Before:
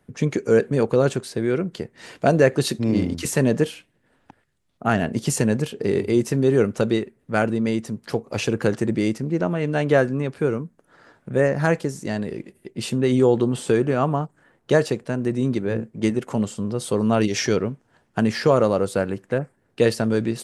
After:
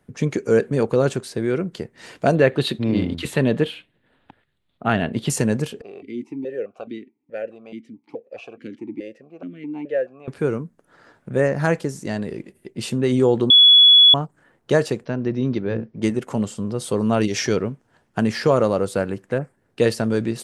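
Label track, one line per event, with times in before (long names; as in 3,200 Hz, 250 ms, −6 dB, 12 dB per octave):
2.350000	5.300000	high shelf with overshoot 4,600 Hz −7.5 dB, Q 3
5.810000	10.280000	formant filter that steps through the vowels 4.7 Hz
13.500000	14.140000	beep over 3,390 Hz −7 dBFS
15.050000	16.020000	Chebyshev low-pass filter 5,700 Hz, order 5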